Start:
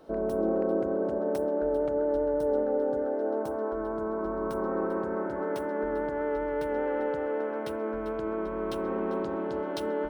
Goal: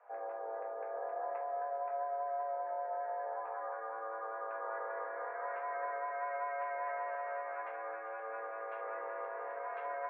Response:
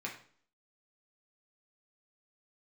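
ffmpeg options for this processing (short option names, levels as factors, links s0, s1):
-filter_complex "[0:a]alimiter=limit=0.0841:level=0:latency=1:release=78[s0];[1:a]atrim=start_sample=2205,atrim=end_sample=3969[s1];[s0][s1]afir=irnorm=-1:irlink=0,highpass=f=530:t=q:w=0.5412,highpass=f=530:t=q:w=1.307,lowpass=f=2100:t=q:w=0.5176,lowpass=f=2100:t=q:w=0.7071,lowpass=f=2100:t=q:w=1.932,afreqshift=120,volume=0.75"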